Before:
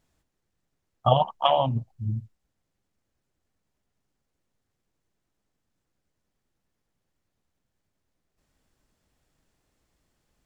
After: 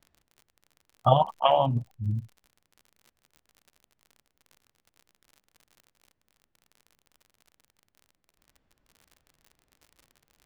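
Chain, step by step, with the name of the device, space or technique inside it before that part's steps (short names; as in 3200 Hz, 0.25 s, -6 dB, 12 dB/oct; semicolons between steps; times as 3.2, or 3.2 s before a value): lo-fi chain (LPF 3100 Hz 12 dB/oct; wow and flutter; crackle 54/s -42 dBFS)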